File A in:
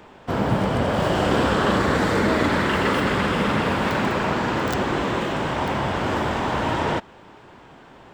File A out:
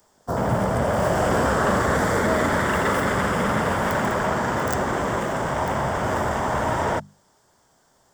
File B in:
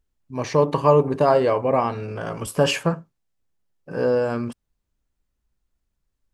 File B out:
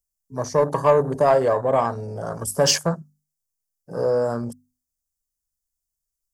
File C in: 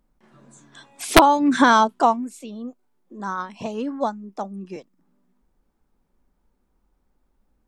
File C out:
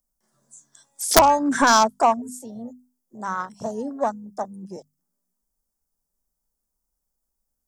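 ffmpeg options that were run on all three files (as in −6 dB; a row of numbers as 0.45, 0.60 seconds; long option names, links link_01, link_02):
-filter_complex "[0:a]afwtdn=0.0282,equalizer=frequency=315:width_type=o:width=0.33:gain=-5,equalizer=frequency=630:width_type=o:width=0.33:gain=4,equalizer=frequency=2500:width_type=o:width=0.33:gain=-8,equalizer=frequency=4000:width_type=o:width=0.33:gain=-9,acrossover=split=230[link_01][link_02];[link_02]aexciter=amount=10.4:drive=2.6:freq=4100[link_03];[link_01][link_03]amix=inputs=2:normalize=0,bandreject=frequency=50:width_type=h:width=6,bandreject=frequency=100:width_type=h:width=6,bandreject=frequency=150:width_type=h:width=6,bandreject=frequency=200:width_type=h:width=6,bandreject=frequency=250:width_type=h:width=6,acontrast=39,equalizer=frequency=330:width_type=o:width=2.9:gain=-3,volume=-3.5dB"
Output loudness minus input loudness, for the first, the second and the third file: −0.5, 0.0, −1.0 LU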